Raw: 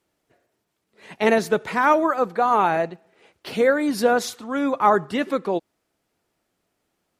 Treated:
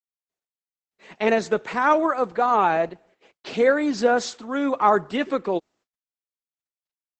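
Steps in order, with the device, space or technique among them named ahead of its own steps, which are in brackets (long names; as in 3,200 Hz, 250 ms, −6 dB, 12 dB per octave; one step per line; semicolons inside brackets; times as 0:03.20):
video call (high-pass filter 170 Hz 12 dB per octave; automatic gain control gain up to 3.5 dB; noise gate −52 dBFS, range −32 dB; level −2.5 dB; Opus 12 kbit/s 48,000 Hz)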